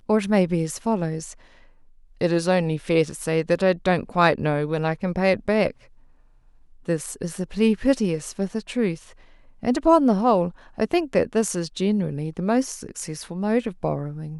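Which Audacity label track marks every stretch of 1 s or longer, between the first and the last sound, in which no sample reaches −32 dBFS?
5.710000	6.880000	silence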